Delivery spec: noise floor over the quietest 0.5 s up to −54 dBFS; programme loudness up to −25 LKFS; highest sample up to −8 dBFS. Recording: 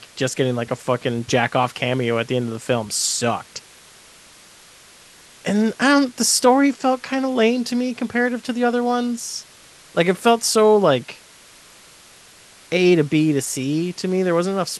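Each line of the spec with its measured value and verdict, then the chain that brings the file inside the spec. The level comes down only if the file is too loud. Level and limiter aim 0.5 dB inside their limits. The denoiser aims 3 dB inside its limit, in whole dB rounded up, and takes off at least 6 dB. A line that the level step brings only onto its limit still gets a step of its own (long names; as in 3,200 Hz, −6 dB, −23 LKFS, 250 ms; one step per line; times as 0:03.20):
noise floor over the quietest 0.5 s −47 dBFS: out of spec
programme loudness −19.5 LKFS: out of spec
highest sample −2.5 dBFS: out of spec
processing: broadband denoise 6 dB, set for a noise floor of −47 dBFS
level −6 dB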